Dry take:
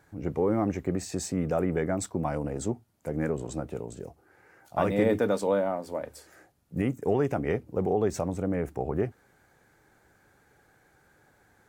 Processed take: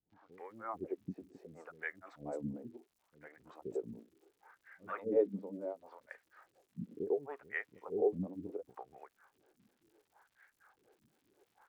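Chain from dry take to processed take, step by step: in parallel at +3 dB: compression, threshold -34 dBFS, peak gain reduction 14.5 dB; on the sum: granulator 198 ms, grains 4.2 per s; wah-wah 0.7 Hz 220–1900 Hz, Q 4.3; crackle 240 per s -62 dBFS; three bands offset in time lows, mids, highs 100/320 ms, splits 330/5100 Hz; trim +1 dB

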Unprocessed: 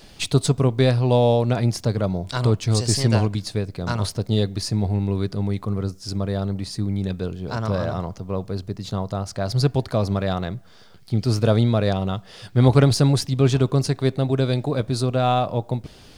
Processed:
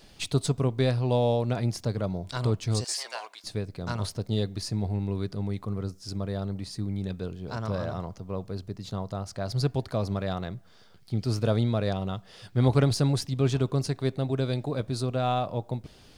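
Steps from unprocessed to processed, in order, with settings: 2.84–3.44 s: high-pass 720 Hz 24 dB/octave; trim -7 dB

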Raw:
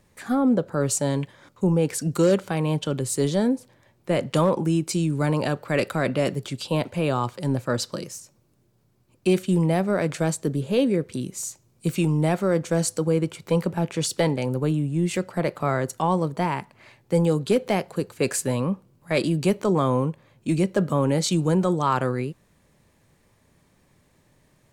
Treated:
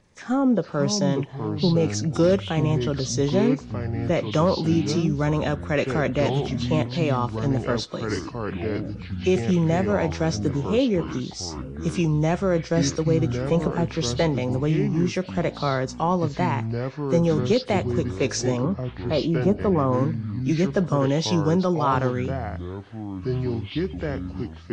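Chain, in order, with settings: knee-point frequency compression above 2.9 kHz 1.5:1; 18.57–19.93 s: high-order bell 3.7 kHz -14.5 dB 2.5 oct; ever faster or slower copies 400 ms, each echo -5 st, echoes 3, each echo -6 dB

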